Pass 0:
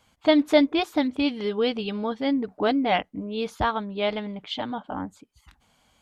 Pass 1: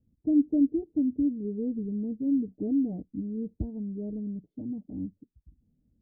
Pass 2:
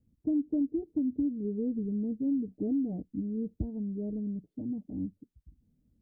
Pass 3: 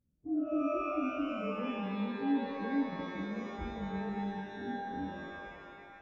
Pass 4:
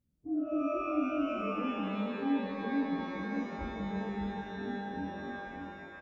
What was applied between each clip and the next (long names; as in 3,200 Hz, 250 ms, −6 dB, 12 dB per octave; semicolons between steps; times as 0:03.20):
inverse Chebyshev low-pass filter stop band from 1,100 Hz, stop band 60 dB
downward compressor, threshold −26 dBFS, peak gain reduction 8.5 dB
partials spread apart or drawn together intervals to 113%; reverb with rising layers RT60 2.1 s, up +12 semitones, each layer −2 dB, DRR 2.5 dB; level −6 dB
single-tap delay 599 ms −5.5 dB